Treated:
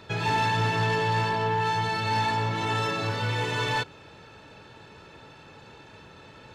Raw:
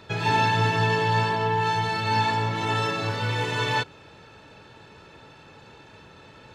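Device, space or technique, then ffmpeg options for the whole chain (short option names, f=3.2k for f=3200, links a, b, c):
saturation between pre-emphasis and de-emphasis: -af "highshelf=f=2.8k:g=9,asoftclip=type=tanh:threshold=-18dB,highshelf=f=2.8k:g=-9"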